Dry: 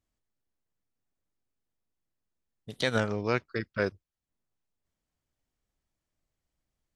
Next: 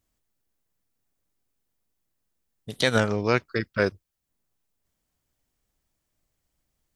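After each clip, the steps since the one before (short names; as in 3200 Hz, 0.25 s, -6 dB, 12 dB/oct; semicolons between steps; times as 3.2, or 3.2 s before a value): high shelf 8400 Hz +8 dB; gain +5.5 dB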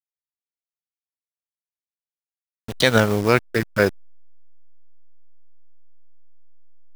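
level-crossing sampler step -33 dBFS; gain +5.5 dB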